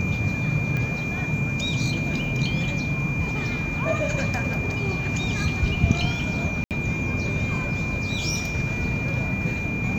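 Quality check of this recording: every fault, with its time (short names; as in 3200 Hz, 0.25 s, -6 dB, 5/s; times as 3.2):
tone 2400 Hz -29 dBFS
0.77 pop -16 dBFS
6.64–6.71 gap 68 ms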